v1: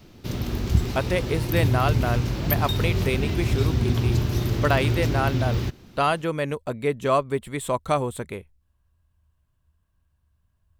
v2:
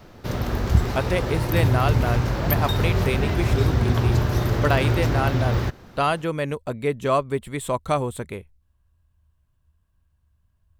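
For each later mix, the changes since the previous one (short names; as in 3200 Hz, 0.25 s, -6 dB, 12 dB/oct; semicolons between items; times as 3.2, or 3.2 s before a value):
background: add band shelf 940 Hz +8.5 dB 2.3 oct; master: add low shelf 120 Hz +3.5 dB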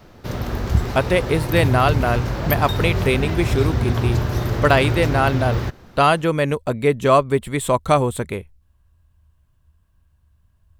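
speech +6.5 dB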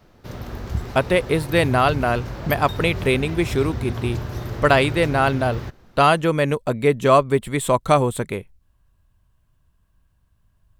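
speech: add bell 76 Hz -14 dB 0.26 oct; background -7.5 dB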